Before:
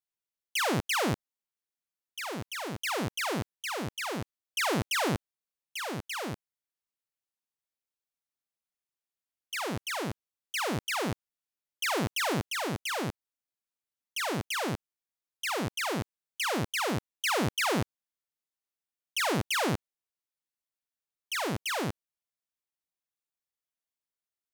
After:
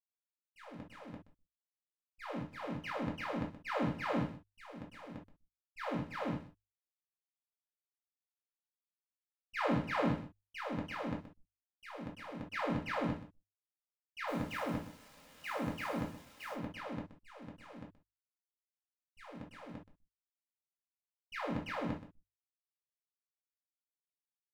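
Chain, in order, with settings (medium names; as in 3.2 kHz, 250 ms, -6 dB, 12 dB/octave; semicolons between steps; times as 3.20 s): compressor with a negative ratio -33 dBFS, ratio -1; expander -24 dBFS; low-pass 2.2 kHz 12 dB/octave; 14.27–16.53 s: added noise white -61 dBFS; feedback delay 125 ms, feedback 19%, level -13 dB; hysteresis with a dead band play -52 dBFS; hum notches 50/100 Hz; comb of notches 380 Hz; reverberation, pre-delay 4 ms, DRR -1 dB; trim +4.5 dB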